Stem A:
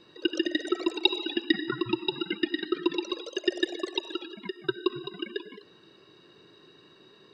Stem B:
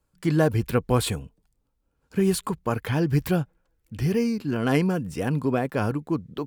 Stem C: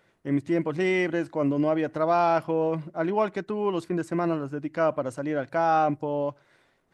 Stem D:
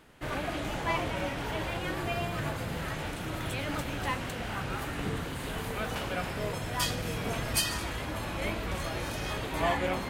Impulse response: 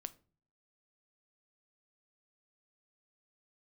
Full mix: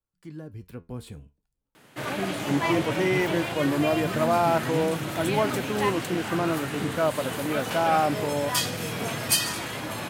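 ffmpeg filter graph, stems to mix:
-filter_complex "[1:a]acrossover=split=420[a][b];[b]acompressor=threshold=-35dB:ratio=3[c];[a][c]amix=inputs=2:normalize=0,flanger=delay=9:depth=5.5:regen=68:speed=0.31:shape=sinusoidal,volume=-13.5dB[d];[2:a]adelay=2200,volume=-8dB[e];[3:a]highpass=f=110:w=0.5412,highpass=f=110:w=1.3066,highshelf=f=4.2k:g=5,adelay=1750,volume=-4.5dB[f];[d][e][f]amix=inputs=3:normalize=0,dynaudnorm=f=350:g=5:m=7.5dB"

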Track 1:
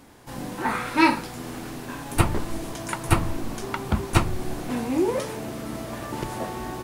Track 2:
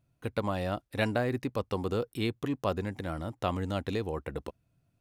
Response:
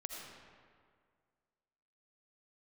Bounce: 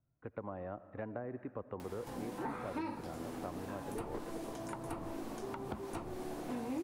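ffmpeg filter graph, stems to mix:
-filter_complex "[0:a]alimiter=limit=-14.5dB:level=0:latency=1:release=144,acompressor=mode=upward:threshold=-33dB:ratio=2.5,adelay=1800,volume=-6dB[a];[1:a]lowpass=f=1.8k:w=0.5412,lowpass=f=1.8k:w=1.3066,volume=-10dB,asplit=2[b][c];[c]volume=-11dB[d];[2:a]atrim=start_sample=2205[e];[d][e]afir=irnorm=-1:irlink=0[f];[a][b][f]amix=inputs=3:normalize=0,acrossover=split=240|1000[g][h][i];[g]acompressor=threshold=-50dB:ratio=4[j];[h]acompressor=threshold=-39dB:ratio=4[k];[i]acompressor=threshold=-55dB:ratio=4[l];[j][k][l]amix=inputs=3:normalize=0"

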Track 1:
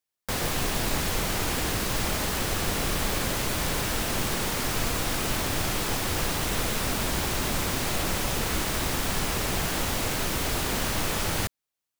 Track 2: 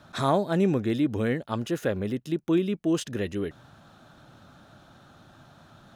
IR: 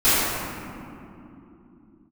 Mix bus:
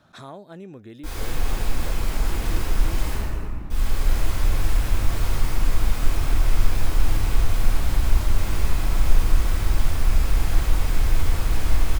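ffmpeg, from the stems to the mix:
-filter_complex "[0:a]alimiter=level_in=0.5dB:limit=-24dB:level=0:latency=1,volume=-0.5dB,adelay=750,volume=-16dB,asplit=3[a][b][c];[a]atrim=end=3.14,asetpts=PTS-STARTPTS,afade=t=out:st=3.136:d=0.004:c=hsin[d];[b]atrim=start=3.14:end=3.7,asetpts=PTS-STARTPTS,volume=0[e];[c]atrim=start=3.7,asetpts=PTS-STARTPTS,afade=t=in:d=0.004:c=hsin[f];[d][e][f]concat=n=3:v=0:a=1,asplit=2[g][h];[h]volume=-4dB[i];[1:a]acompressor=threshold=-39dB:ratio=2,volume=-5.5dB[j];[2:a]atrim=start_sample=2205[k];[i][k]afir=irnorm=-1:irlink=0[l];[g][j][l]amix=inputs=3:normalize=0,asubboost=boost=6.5:cutoff=82"

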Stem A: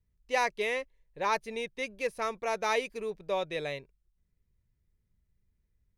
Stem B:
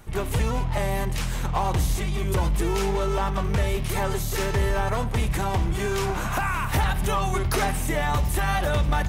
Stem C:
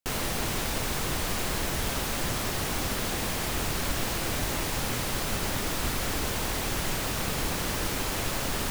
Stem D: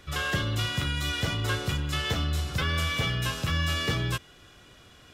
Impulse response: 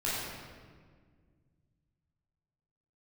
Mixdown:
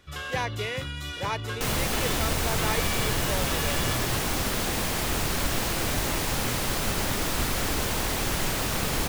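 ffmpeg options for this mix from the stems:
-filter_complex "[0:a]volume=-2.5dB[a];[2:a]adelay=1550,volume=2.5dB[b];[3:a]volume=-5.5dB[c];[a][b][c]amix=inputs=3:normalize=0"

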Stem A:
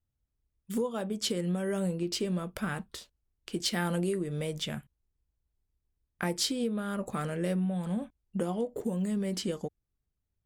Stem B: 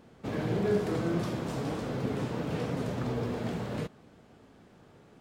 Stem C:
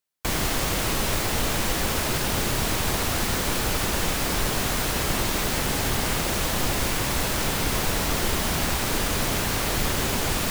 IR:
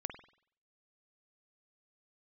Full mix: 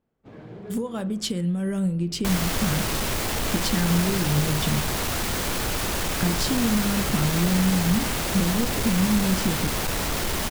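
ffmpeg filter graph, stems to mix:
-filter_complex "[0:a]asubboost=boost=8.5:cutoff=200,volume=2dB,asplit=3[a][b][c];[b]volume=-9.5dB[d];[1:a]aemphasis=mode=reproduction:type=50kf,volume=-12dB,asplit=2[e][f];[f]volume=-14dB[g];[2:a]asoftclip=type=tanh:threshold=-22.5dB,adelay=2000,volume=1.5dB[h];[c]apad=whole_len=229638[i];[e][i]sidechaincompress=threshold=-32dB:ratio=8:attack=16:release=390[j];[a][j]amix=inputs=2:normalize=0,agate=range=-15dB:threshold=-49dB:ratio=16:detection=peak,acompressor=threshold=-26dB:ratio=6,volume=0dB[k];[3:a]atrim=start_sample=2205[l];[d][g]amix=inputs=2:normalize=0[m];[m][l]afir=irnorm=-1:irlink=0[n];[h][k][n]amix=inputs=3:normalize=0"

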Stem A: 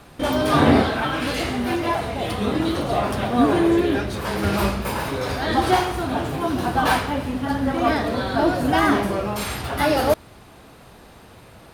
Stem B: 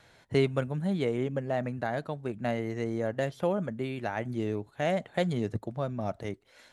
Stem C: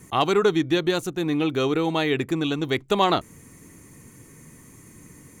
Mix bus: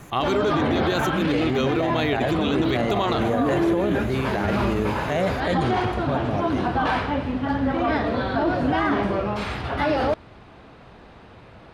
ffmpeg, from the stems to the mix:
-filter_complex "[0:a]lowpass=3.3k,volume=0dB[a];[1:a]dynaudnorm=f=160:g=11:m=13dB,adelay=300,volume=-3.5dB[b];[2:a]equalizer=f=8.8k:w=4.4:g=-14.5,volume=2.5dB[c];[a][b][c]amix=inputs=3:normalize=0,alimiter=limit=-13.5dB:level=0:latency=1:release=24"

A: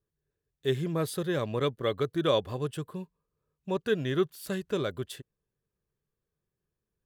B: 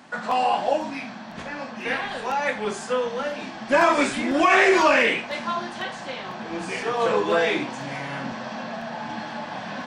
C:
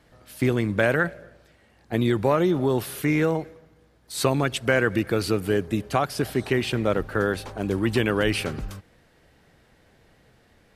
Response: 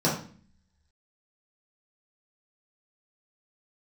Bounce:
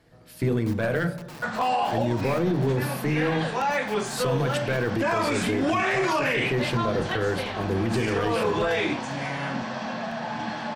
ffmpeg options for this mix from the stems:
-filter_complex "[0:a]aeval=exprs='(mod(17.8*val(0)+1,2)-1)/17.8':c=same,volume=-16dB,asplit=2[a][b];[b]volume=-19dB[c];[1:a]adelay=1300,volume=1dB[d];[2:a]aeval=exprs='(tanh(4.47*val(0)+0.5)-tanh(0.5))/4.47':c=same,volume=-2dB,asplit=2[e][f];[f]volume=-19dB[g];[3:a]atrim=start_sample=2205[h];[c][g]amix=inputs=2:normalize=0[i];[i][h]afir=irnorm=-1:irlink=0[j];[a][d][e][j]amix=inputs=4:normalize=0,equalizer=f=110:w=1.5:g=3.5,alimiter=limit=-16dB:level=0:latency=1:release=33"

